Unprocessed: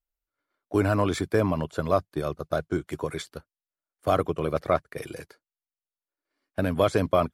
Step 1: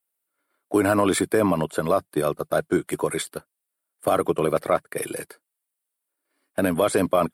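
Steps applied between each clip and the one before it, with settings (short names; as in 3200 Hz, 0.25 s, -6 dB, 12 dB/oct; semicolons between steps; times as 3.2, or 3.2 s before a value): HPF 190 Hz 12 dB/oct; resonant high shelf 7600 Hz +6 dB, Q 3; limiter -16.5 dBFS, peak gain reduction 7.5 dB; gain +7 dB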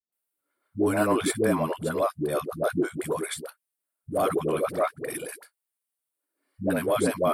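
dispersion highs, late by 0.124 s, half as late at 360 Hz; gain -3.5 dB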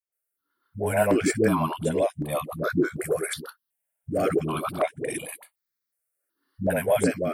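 AGC gain up to 5 dB; step phaser 2.7 Hz 960–4500 Hz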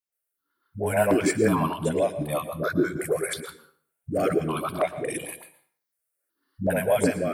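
plate-style reverb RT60 0.51 s, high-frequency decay 0.85×, pre-delay 0.1 s, DRR 12.5 dB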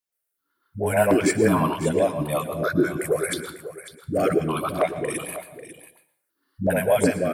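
echo 0.546 s -13.5 dB; gain +2.5 dB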